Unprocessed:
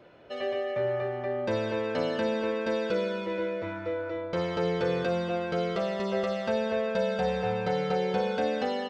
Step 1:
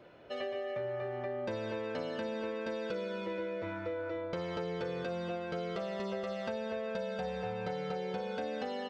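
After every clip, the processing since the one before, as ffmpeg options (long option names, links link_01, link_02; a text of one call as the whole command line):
ffmpeg -i in.wav -af "acompressor=threshold=-32dB:ratio=6,volume=-2dB" out.wav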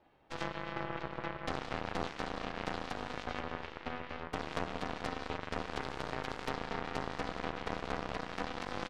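ffmpeg -i in.wav -af "aeval=exprs='val(0)*sin(2*PI*250*n/s)':channel_layout=same,bandreject=frequency=50:width_type=h:width=6,bandreject=frequency=100:width_type=h:width=6,bandreject=frequency=150:width_type=h:width=6,bandreject=frequency=200:width_type=h:width=6,bandreject=frequency=250:width_type=h:width=6,bandreject=frequency=300:width_type=h:width=6,bandreject=frequency=350:width_type=h:width=6,aeval=exprs='0.0631*(cos(1*acos(clip(val(0)/0.0631,-1,1)))-cos(1*PI/2))+0.0178*(cos(4*acos(clip(val(0)/0.0631,-1,1)))-cos(4*PI/2))+0.0141*(cos(5*acos(clip(val(0)/0.0631,-1,1)))-cos(5*PI/2))+0.0224*(cos(7*acos(clip(val(0)/0.0631,-1,1)))-cos(7*PI/2))':channel_layout=same,volume=1dB" out.wav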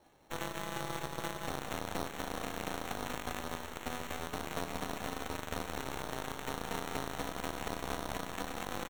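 ffmpeg -i in.wav -af "alimiter=limit=-24dB:level=0:latency=1:release=223,acrusher=samples=9:mix=1:aa=0.000001,aecho=1:1:185:0.282,volume=2.5dB" out.wav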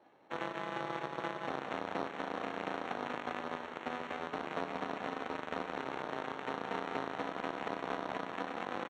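ffmpeg -i in.wav -af "highpass=220,lowpass=2500,volume=2dB" out.wav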